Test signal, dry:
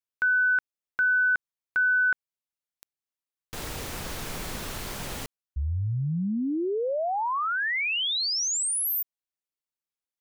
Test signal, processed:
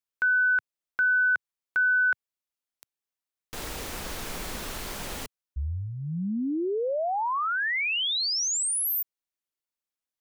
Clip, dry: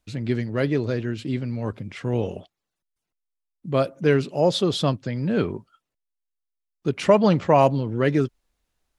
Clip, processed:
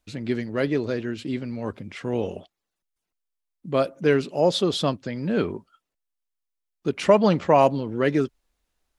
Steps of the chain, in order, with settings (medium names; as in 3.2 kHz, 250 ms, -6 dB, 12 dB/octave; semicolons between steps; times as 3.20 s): peaking EQ 120 Hz -8 dB 0.74 oct